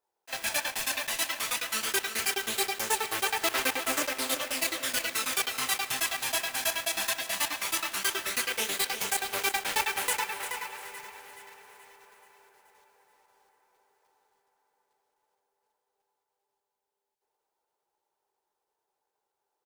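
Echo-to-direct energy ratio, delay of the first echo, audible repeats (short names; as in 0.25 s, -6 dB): -10.5 dB, 0.348 s, 2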